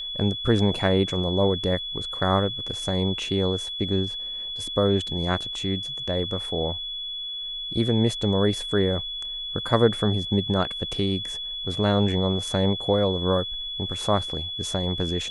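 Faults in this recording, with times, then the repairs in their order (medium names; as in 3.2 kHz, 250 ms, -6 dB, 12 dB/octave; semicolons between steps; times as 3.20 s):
whine 3.4 kHz -30 dBFS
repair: band-stop 3.4 kHz, Q 30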